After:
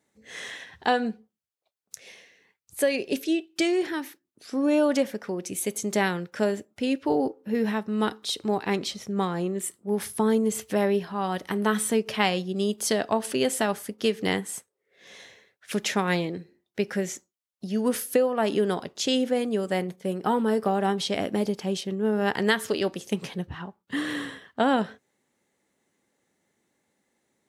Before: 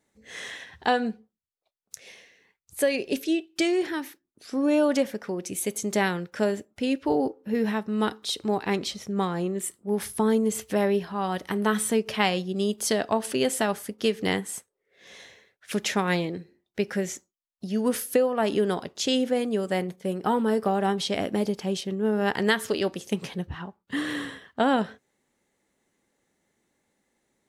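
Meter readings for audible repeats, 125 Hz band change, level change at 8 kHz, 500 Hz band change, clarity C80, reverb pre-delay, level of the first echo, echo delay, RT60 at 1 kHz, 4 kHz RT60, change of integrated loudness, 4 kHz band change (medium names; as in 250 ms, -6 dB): no echo, 0.0 dB, 0.0 dB, 0.0 dB, no reverb, no reverb, no echo, no echo, no reverb, no reverb, 0.0 dB, 0.0 dB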